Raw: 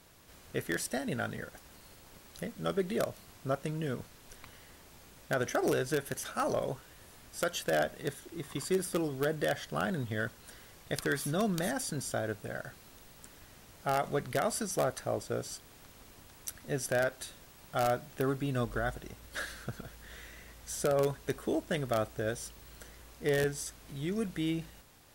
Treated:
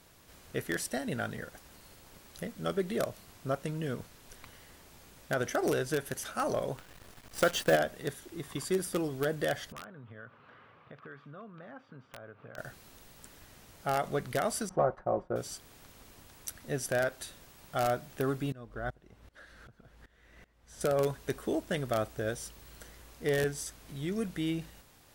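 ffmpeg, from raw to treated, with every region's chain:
ffmpeg -i in.wav -filter_complex "[0:a]asettb=1/sr,asplit=3[link_01][link_02][link_03];[link_01]atrim=end=6.774[link_04];[link_02]atrim=start=6.77:end=7.76,asetpts=PTS-STARTPTS,afade=type=in:duration=0.004:curve=qsin,afade=type=out:start_time=0.986:duration=0.004:curve=qsin,highshelf=frequency=5900:gain=-8,acontrast=53,acrusher=bits=7:dc=4:mix=0:aa=0.000001[link_05];[link_03]atrim=start=7.756[link_06];[link_04][link_05]acrossfade=duration=0.004:curve1=hsin:curve2=qsin[link_07];[link_07][link_06]acrossfade=duration=0.004:curve1=qsin:curve2=hsin,asettb=1/sr,asplit=3[link_08][link_09][link_10];[link_08]atrim=end=9.724[link_11];[link_09]atrim=start=9.72:end=12.58,asetpts=PTS-STARTPTS,afade=type=in:duration=0.004:curve=qsin,afade=type=out:start_time=2.856:duration=0.004:curve=qsin,acompressor=threshold=-43dB:ratio=6:attack=3.2:release=140:knee=1:detection=peak,highpass=frequency=110:width=0.5412,highpass=frequency=110:width=1.3066,equalizer=frequency=190:width_type=q:width=4:gain=-7,equalizer=frequency=340:width_type=q:width=4:gain=-7,equalizer=frequency=710:width_type=q:width=4:gain=-3,equalizer=frequency=1200:width_type=q:width=4:gain=8,equalizer=frequency=1900:width_type=q:width=4:gain=-5,lowpass=frequency=2500:width=0.5412,lowpass=frequency=2500:width=1.3066,aeval=exprs='(mod(56.2*val(0)+1,2)-1)/56.2':channel_layout=same[link_12];[link_10]atrim=start=12.576[link_13];[link_11][link_12]acrossfade=duration=0.004:curve1=hsin:curve2=qsin[link_14];[link_14][link_13]acrossfade=duration=0.004:curve1=qsin:curve2=hsin,asettb=1/sr,asplit=3[link_15][link_16][link_17];[link_15]atrim=end=14.694[link_18];[link_16]atrim=start=14.69:end=15.36,asetpts=PTS-STARTPTS,afade=type=in:duration=0.004:curve=qsin,afade=type=out:start_time=0.666:duration=0.004:curve=qsin,agate=range=-33dB:threshold=-41dB:ratio=3:release=100:detection=peak,lowpass=frequency=1000:width_type=q:width=1.6,aecho=1:1:5.5:0.54,atrim=end_sample=29547[link_19];[link_17]atrim=start=15.356[link_20];[link_18][link_19]acrossfade=duration=0.004:curve1=hsin:curve2=qsin[link_21];[link_21][link_20]acrossfade=duration=0.004:curve1=qsin:curve2=hsin,asettb=1/sr,asplit=3[link_22][link_23][link_24];[link_22]atrim=end=18.524[link_25];[link_23]atrim=start=18.52:end=20.81,asetpts=PTS-STARTPTS,afade=type=in:duration=0.004:curve=qsin,afade=type=out:start_time=2.286:duration=0.004:curve=qsin,lowpass=frequency=2100:poles=1,aeval=exprs='val(0)*pow(10,-20*if(lt(mod(-2.6*n/s,1),2*abs(-2.6)/1000),1-mod(-2.6*n/s,1)/(2*abs(-2.6)/1000),(mod(-2.6*n/s,1)-2*abs(-2.6)/1000)/(1-2*abs(-2.6)/1000))/20)':channel_layout=same[link_26];[link_24]atrim=start=20.806[link_27];[link_25][link_26]acrossfade=duration=0.004:curve1=hsin:curve2=qsin[link_28];[link_28][link_27]acrossfade=duration=0.004:curve1=qsin:curve2=hsin" out.wav

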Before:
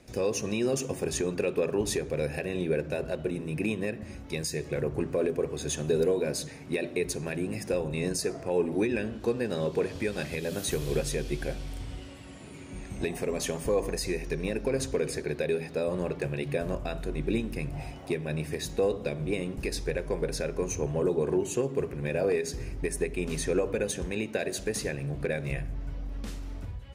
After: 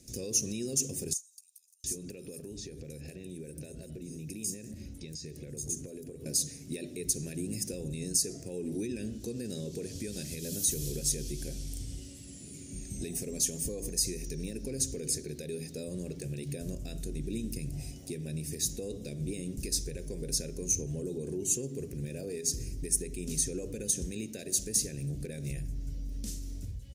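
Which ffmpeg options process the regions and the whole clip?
ffmpeg -i in.wav -filter_complex "[0:a]asettb=1/sr,asplit=3[link_01][link_02][link_03];[link_01]atrim=end=1.134[link_04];[link_02]atrim=start=1.13:end=6.26,asetpts=PTS-STARTPTS,afade=type=in:duration=0.004:curve=qsin,afade=type=out:start_time=5.126:duration=0.004:curve=qsin,acompressor=threshold=-35dB:ratio=6:attack=3.2:release=140:knee=1:detection=peak,acrossover=split=5300[link_05][link_06];[link_05]adelay=710[link_07];[link_07][link_06]amix=inputs=2:normalize=0,atrim=end_sample=226233[link_08];[link_03]atrim=start=6.256[link_09];[link_04][link_08]acrossfade=duration=0.004:curve1=hsin:curve2=qsin[link_10];[link_10][link_09]acrossfade=duration=0.004:curve1=qsin:curve2=hsin,alimiter=limit=-23dB:level=0:latency=1:release=70,firequalizer=gain_entry='entry(250,0);entry(950,-23);entry(1800,-12);entry(5900,11)':delay=0.05:min_phase=1,volume=-1.5dB" out.wav

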